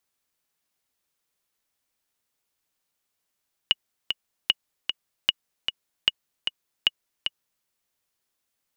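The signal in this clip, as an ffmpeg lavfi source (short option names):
-f lavfi -i "aevalsrc='pow(10,(-5-6.5*gte(mod(t,2*60/152),60/152))/20)*sin(2*PI*2900*mod(t,60/152))*exp(-6.91*mod(t,60/152)/0.03)':d=3.94:s=44100"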